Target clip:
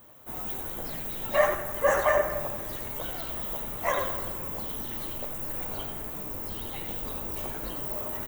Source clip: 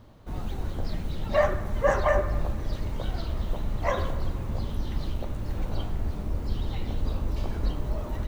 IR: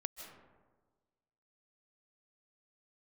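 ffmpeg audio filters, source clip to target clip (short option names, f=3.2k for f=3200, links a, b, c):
-filter_complex "[0:a]aemphasis=mode=production:type=riaa,aecho=1:1:89:0.376,asplit=2[a][b];[1:a]atrim=start_sample=2205[c];[b][c]afir=irnorm=-1:irlink=0,volume=-6dB[d];[a][d]amix=inputs=2:normalize=0,flanger=delay=5.7:depth=4:regen=-49:speed=1.3:shape=triangular,equalizer=f=4.7k:w=1.8:g=-14.5,volume=2.5dB"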